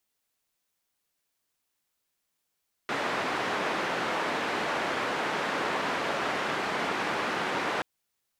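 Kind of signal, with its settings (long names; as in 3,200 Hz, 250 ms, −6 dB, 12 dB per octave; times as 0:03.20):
band-limited noise 220–1,600 Hz, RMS −30 dBFS 4.93 s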